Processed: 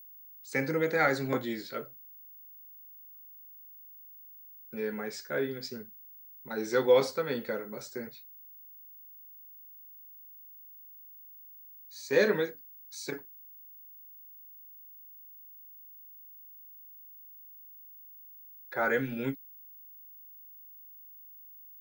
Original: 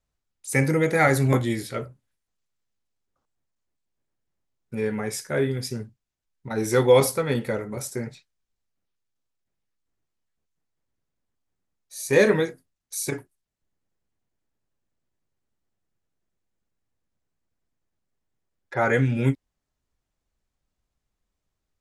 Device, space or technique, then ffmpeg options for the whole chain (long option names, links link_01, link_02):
old television with a line whistle: -af "highpass=frequency=170:width=0.5412,highpass=frequency=170:width=1.3066,equalizer=frequency=490:width_type=q:width=4:gain=3,equalizer=frequency=1500:width_type=q:width=4:gain=6,equalizer=frequency=4300:width_type=q:width=4:gain=8,lowpass=frequency=6700:width=0.5412,lowpass=frequency=6700:width=1.3066,aeval=exprs='val(0)+0.01*sin(2*PI*15625*n/s)':channel_layout=same,volume=-8.5dB"